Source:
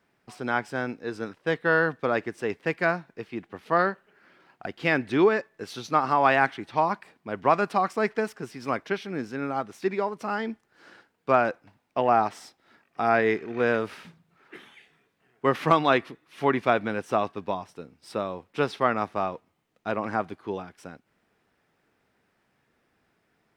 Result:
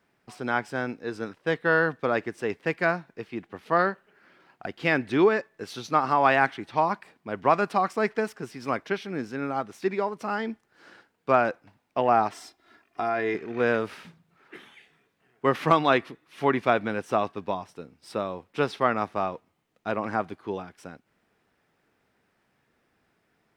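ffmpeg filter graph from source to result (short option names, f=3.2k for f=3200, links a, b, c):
-filter_complex "[0:a]asettb=1/sr,asplit=3[a][b][c];[a]atrim=end=12.324[d];[b]atrim=start=12.32:end=13.35,asetpts=PTS-STARTPTS,afade=t=in:d=0.004:c=qsin,afade=t=out:st=1.026:d=0.004:c=qsin,aecho=1:1:2.9:0.59,atrim=end_sample=45423,acompressor=threshold=-24dB:ratio=3:attack=3.2:release=140:knee=1:detection=peak[e];[c]atrim=start=13.346[f];[d][e]acrossfade=d=0.004:c1=hsin:c2=qsin[g];[g][f]acrossfade=d=0.004:c1=qsin:c2=hsin"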